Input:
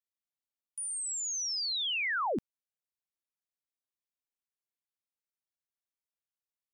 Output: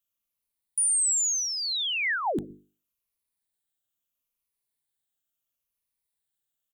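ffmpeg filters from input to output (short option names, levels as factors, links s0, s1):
-filter_complex "[0:a]afftfilt=real='re*pow(10,7/40*sin(2*PI*(0.87*log(max(b,1)*sr/1024/100)/log(2)-(-0.74)*(pts-256)/sr)))':imag='im*pow(10,7/40*sin(2*PI*(0.87*log(max(b,1)*sr/1024/100)/log(2)-(-0.74)*(pts-256)/sr)))':win_size=1024:overlap=0.75,lowshelf=f=180:g=9.5,bandreject=f=50:t=h:w=6,bandreject=f=100:t=h:w=6,bandreject=f=150:t=h:w=6,bandreject=f=200:t=h:w=6,bandreject=f=250:t=h:w=6,bandreject=f=300:t=h:w=6,bandreject=f=350:t=h:w=6,bandreject=f=400:t=h:w=6,bandreject=f=450:t=h:w=6,acrossover=split=380[s0][s1];[s0]aecho=1:1:120:0.2[s2];[s1]aexciter=amount=1.3:drive=6.1:freq=2900[s3];[s2][s3]amix=inputs=2:normalize=0,volume=1.33"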